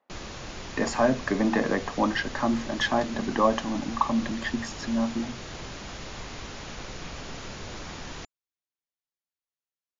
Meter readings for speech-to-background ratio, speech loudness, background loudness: 12.0 dB, -27.0 LUFS, -39.0 LUFS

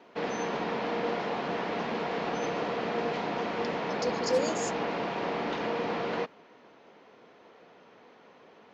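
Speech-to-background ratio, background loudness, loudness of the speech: -1.0 dB, -32.0 LUFS, -33.0 LUFS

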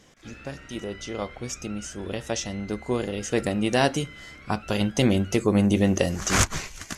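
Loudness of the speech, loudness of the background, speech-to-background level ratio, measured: -25.5 LUFS, -45.0 LUFS, 19.5 dB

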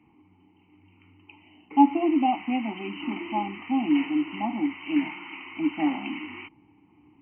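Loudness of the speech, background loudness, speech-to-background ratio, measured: -26.5 LUFS, -38.0 LUFS, 11.5 dB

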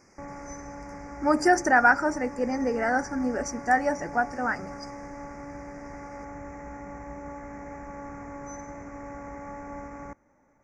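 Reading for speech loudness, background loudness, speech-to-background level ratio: -25.0 LUFS, -40.5 LUFS, 15.5 dB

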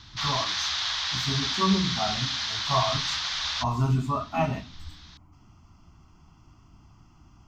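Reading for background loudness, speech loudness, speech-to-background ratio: -27.5 LUFS, -29.0 LUFS, -1.5 dB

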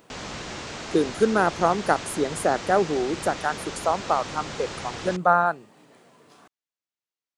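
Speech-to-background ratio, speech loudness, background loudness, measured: 10.5 dB, -24.5 LUFS, -35.0 LUFS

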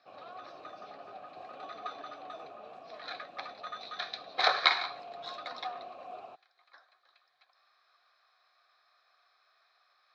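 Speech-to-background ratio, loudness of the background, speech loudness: 14.5 dB, -48.0 LUFS, -33.5 LUFS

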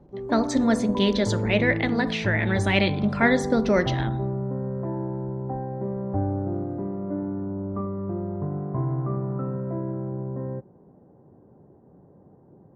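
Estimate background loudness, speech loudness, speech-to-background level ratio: -29.5 LUFS, -24.0 LUFS, 5.5 dB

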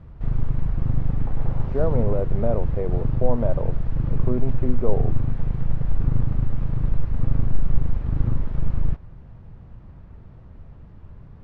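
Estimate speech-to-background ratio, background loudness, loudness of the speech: -1.5 dB, -27.0 LUFS, -28.5 LUFS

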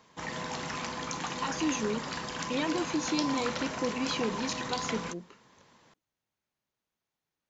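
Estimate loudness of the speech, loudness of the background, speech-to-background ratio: -33.5 LUFS, -35.5 LUFS, 2.0 dB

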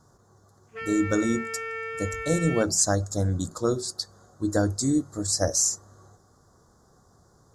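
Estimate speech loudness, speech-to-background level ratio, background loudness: -26.0 LUFS, 7.5 dB, -33.5 LUFS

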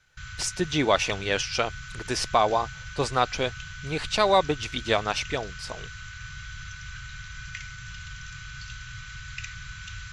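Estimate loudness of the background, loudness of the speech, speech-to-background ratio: -39.5 LUFS, -26.0 LUFS, 13.5 dB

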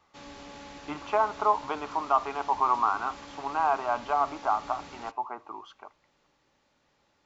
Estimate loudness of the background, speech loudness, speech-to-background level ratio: -45.5 LUFS, -28.5 LUFS, 17.0 dB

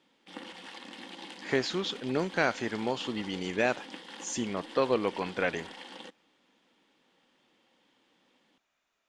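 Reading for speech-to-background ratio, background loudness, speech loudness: 13.5 dB, -45.0 LUFS, -31.5 LUFS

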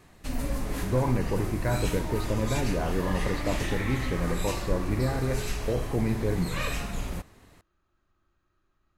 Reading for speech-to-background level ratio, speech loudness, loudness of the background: 3.5 dB, -30.0 LUFS, -33.5 LUFS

